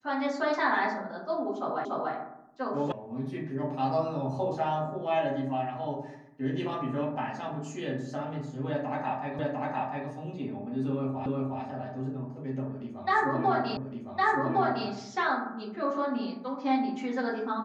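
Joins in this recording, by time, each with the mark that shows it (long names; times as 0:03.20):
0:01.85: the same again, the last 0.29 s
0:02.92: cut off before it has died away
0:09.39: the same again, the last 0.7 s
0:11.26: the same again, the last 0.36 s
0:13.77: the same again, the last 1.11 s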